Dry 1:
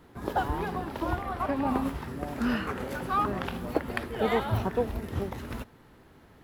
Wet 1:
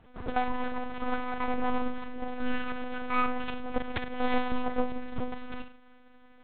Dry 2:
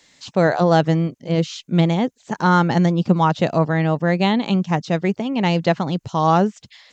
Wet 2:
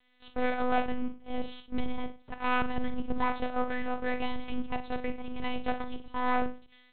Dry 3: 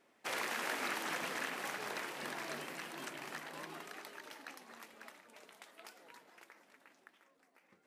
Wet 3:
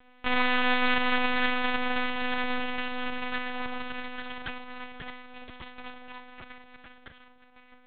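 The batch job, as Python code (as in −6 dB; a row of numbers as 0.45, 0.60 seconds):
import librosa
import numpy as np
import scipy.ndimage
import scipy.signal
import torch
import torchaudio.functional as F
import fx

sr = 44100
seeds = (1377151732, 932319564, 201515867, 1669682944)

y = np.maximum(x, 0.0)
y = fx.room_flutter(y, sr, wall_m=8.2, rt60_s=0.34)
y = fx.lpc_monotone(y, sr, seeds[0], pitch_hz=250.0, order=8)
y = y * 10.0 ** (-30 / 20.0) / np.sqrt(np.mean(np.square(y)))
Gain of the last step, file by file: +2.0, −10.0, +16.5 decibels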